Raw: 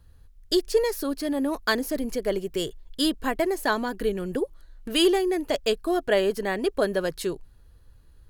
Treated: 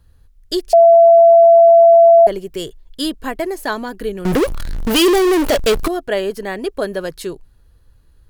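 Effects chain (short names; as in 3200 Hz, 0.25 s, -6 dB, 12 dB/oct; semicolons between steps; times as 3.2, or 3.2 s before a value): 0.73–2.27 bleep 673 Hz -6.5 dBFS; 4.25–5.88 power-law curve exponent 0.35; gain +2.5 dB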